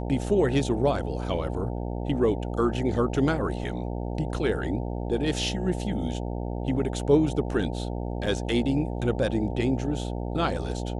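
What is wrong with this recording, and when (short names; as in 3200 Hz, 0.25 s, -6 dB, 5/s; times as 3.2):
buzz 60 Hz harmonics 15 -31 dBFS
8.26–8.27 gap 5 ms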